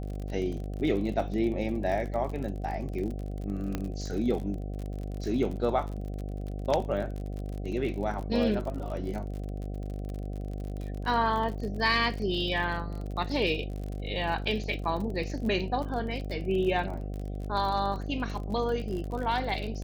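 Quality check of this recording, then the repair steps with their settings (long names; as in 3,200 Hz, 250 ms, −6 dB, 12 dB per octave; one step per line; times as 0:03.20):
mains buzz 50 Hz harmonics 15 −35 dBFS
surface crackle 42 per second −35 dBFS
0:03.75: click −17 dBFS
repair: click removal
hum removal 50 Hz, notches 15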